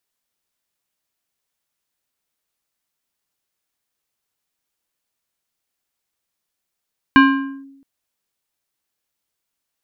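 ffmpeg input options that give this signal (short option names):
-f lavfi -i "aevalsrc='0.631*pow(10,-3*t/0.88)*sin(2*PI*274*t+1.1*clip(1-t/0.49,0,1)*sin(2*PI*4.85*274*t))':d=0.67:s=44100"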